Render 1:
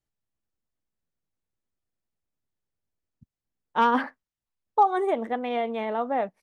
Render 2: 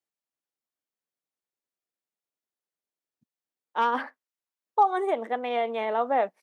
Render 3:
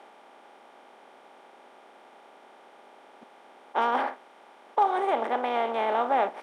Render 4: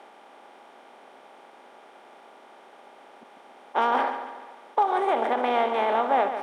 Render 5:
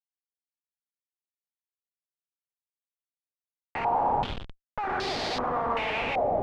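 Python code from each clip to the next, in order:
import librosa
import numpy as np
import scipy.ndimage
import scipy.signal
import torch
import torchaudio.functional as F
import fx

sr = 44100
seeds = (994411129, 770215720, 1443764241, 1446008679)

y1 = scipy.signal.sosfilt(scipy.signal.butter(2, 350.0, 'highpass', fs=sr, output='sos'), x)
y1 = fx.rider(y1, sr, range_db=10, speed_s=2.0)
y2 = fx.bin_compress(y1, sr, power=0.4)
y2 = y2 * librosa.db_to_amplitude(-4.5)
y3 = fx.rider(y2, sr, range_db=10, speed_s=0.5)
y3 = fx.echo_feedback(y3, sr, ms=142, feedback_pct=48, wet_db=-10.0)
y3 = fx.end_taper(y3, sr, db_per_s=130.0)
y3 = y3 * librosa.db_to_amplitude(3.0)
y4 = fx.schmitt(y3, sr, flips_db=-31.5)
y4 = y4 + 10.0 ** (-6.5 / 20.0) * np.pad(y4, (int(118 * sr / 1000.0), 0))[:len(y4)]
y4 = fx.filter_held_lowpass(y4, sr, hz=2.6, low_hz=660.0, high_hz=4500.0)
y4 = y4 * librosa.db_to_amplitude(-4.0)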